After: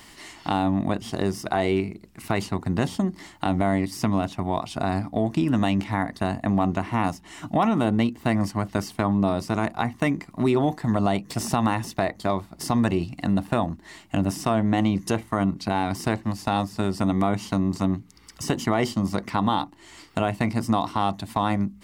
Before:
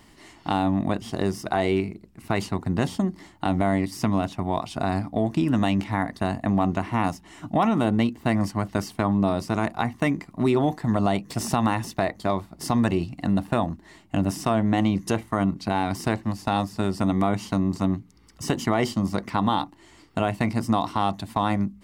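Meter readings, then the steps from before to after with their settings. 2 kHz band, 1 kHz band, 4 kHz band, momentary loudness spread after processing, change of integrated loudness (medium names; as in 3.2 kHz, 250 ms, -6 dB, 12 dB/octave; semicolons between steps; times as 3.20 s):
0.0 dB, 0.0 dB, +0.5 dB, 6 LU, 0.0 dB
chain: tape noise reduction on one side only encoder only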